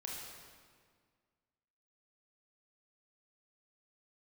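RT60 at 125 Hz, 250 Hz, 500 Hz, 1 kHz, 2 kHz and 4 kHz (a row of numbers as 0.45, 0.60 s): 2.0, 2.1, 1.9, 1.8, 1.6, 1.4 s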